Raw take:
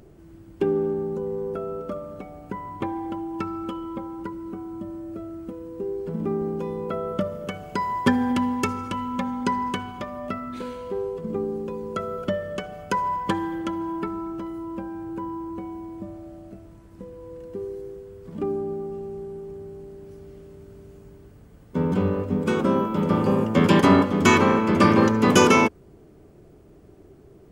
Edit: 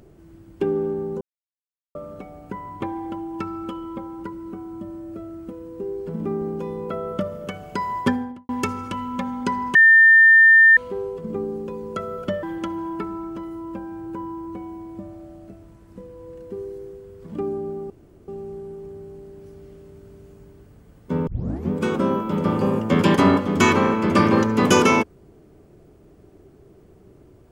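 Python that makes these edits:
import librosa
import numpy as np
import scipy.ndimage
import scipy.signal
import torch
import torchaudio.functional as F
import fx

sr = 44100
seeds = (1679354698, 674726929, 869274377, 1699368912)

y = fx.studio_fade_out(x, sr, start_s=7.98, length_s=0.51)
y = fx.edit(y, sr, fx.silence(start_s=1.21, length_s=0.74),
    fx.bleep(start_s=9.75, length_s=1.02, hz=1800.0, db=-8.0),
    fx.cut(start_s=12.43, length_s=1.03),
    fx.insert_room_tone(at_s=18.93, length_s=0.38),
    fx.tape_start(start_s=21.92, length_s=0.43), tone=tone)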